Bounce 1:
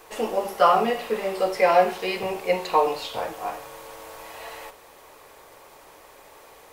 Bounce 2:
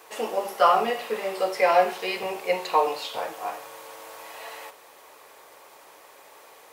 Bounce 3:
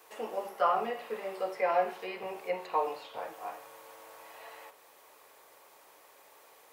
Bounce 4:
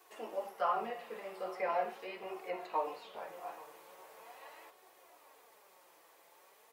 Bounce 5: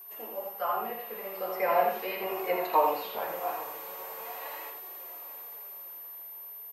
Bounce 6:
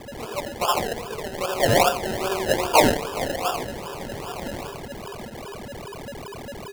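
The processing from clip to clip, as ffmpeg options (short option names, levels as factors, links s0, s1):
-af "highpass=f=430:p=1"
-filter_complex "[0:a]highshelf=f=12000:g=6.5,acrossover=split=330|2500[s0][s1][s2];[s2]acompressor=threshold=0.00398:ratio=6[s3];[s0][s1][s3]amix=inputs=3:normalize=0,volume=0.376"
-af "flanger=delay=2.3:depth=8.6:regen=-65:speed=1.3:shape=triangular,aecho=1:1:837|1674|2511|3348:0.126|0.0579|0.0266|0.0123,flanger=delay=2.7:depth=3.3:regen=53:speed=0.41:shape=sinusoidal,volume=1.41"
-af "dynaudnorm=f=300:g=11:m=3.35,aeval=exprs='val(0)+0.00562*sin(2*PI*13000*n/s)':c=same,aecho=1:1:82:0.562"
-af "acrusher=samples=30:mix=1:aa=0.000001:lfo=1:lforange=18:lforate=2.5,volume=2.37"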